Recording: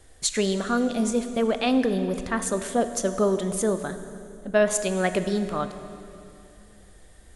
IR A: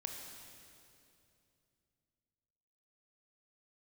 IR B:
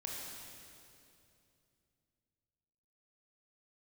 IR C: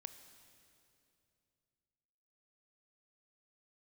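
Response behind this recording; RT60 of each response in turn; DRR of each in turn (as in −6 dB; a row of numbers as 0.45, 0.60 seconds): C; 2.7, 2.7, 2.7 seconds; 2.0, −3.0, 9.5 decibels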